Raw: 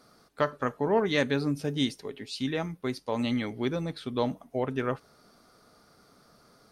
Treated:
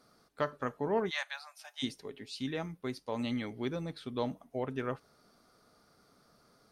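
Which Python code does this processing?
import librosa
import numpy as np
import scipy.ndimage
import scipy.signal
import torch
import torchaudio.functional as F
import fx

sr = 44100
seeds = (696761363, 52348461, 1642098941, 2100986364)

y = fx.steep_highpass(x, sr, hz=660.0, slope=72, at=(1.09, 1.82), fade=0.02)
y = y * librosa.db_to_amplitude(-6.0)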